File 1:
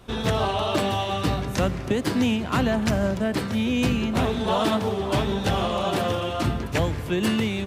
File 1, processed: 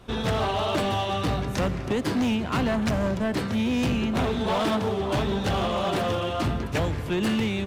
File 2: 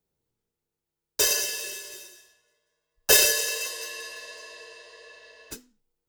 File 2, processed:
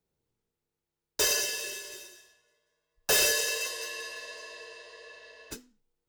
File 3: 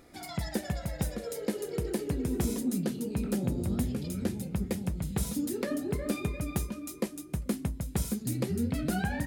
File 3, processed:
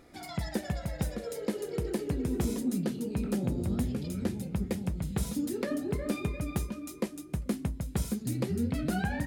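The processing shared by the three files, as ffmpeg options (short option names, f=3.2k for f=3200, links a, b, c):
-af "highshelf=f=7.1k:g=-5.5,asoftclip=type=hard:threshold=-20.5dB"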